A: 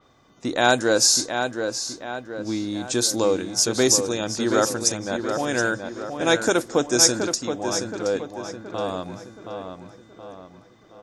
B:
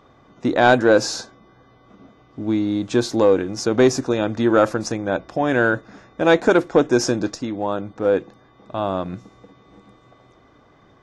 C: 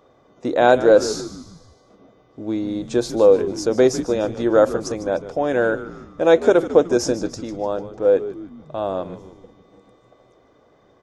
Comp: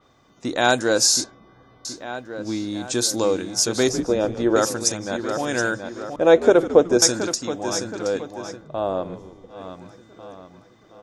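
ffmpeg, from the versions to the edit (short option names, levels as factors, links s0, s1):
-filter_complex "[2:a]asplit=3[s0][s1][s2];[0:a]asplit=5[s3][s4][s5][s6][s7];[s3]atrim=end=1.242[s8];[1:a]atrim=start=1.238:end=1.852[s9];[s4]atrim=start=1.848:end=3.892[s10];[s0]atrim=start=3.888:end=4.562[s11];[s5]atrim=start=4.558:end=6.162[s12];[s1]atrim=start=6.158:end=7.022[s13];[s6]atrim=start=7.018:end=8.69[s14];[s2]atrim=start=8.53:end=9.64[s15];[s7]atrim=start=9.48[s16];[s8][s9]acrossfade=d=0.004:c1=hsin:c2=hsin[s17];[s17][s10]acrossfade=d=0.004:c1=hsin:c2=hsin[s18];[s18][s11]acrossfade=d=0.004:c1=hsin:c2=hsin[s19];[s19][s12]acrossfade=d=0.004:c1=hsin:c2=hsin[s20];[s20][s13]acrossfade=d=0.004:c1=hsin:c2=hsin[s21];[s21][s14]acrossfade=d=0.004:c1=hsin:c2=hsin[s22];[s22][s15]acrossfade=d=0.16:c1=tri:c2=tri[s23];[s23][s16]acrossfade=d=0.16:c1=tri:c2=tri"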